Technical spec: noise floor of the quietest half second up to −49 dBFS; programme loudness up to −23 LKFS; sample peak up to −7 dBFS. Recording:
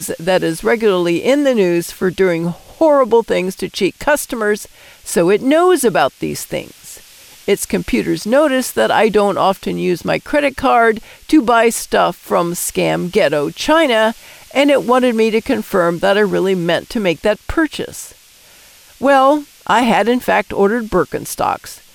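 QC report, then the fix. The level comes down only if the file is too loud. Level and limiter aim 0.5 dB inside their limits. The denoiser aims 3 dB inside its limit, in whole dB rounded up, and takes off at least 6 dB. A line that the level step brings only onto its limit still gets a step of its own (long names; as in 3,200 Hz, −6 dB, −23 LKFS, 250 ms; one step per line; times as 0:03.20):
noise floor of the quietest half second −45 dBFS: out of spec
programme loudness −15.0 LKFS: out of spec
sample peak −2.5 dBFS: out of spec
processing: level −8.5 dB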